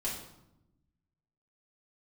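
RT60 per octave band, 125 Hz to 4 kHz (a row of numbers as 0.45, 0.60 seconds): 1.6, 1.4, 0.90, 0.80, 0.65, 0.60 seconds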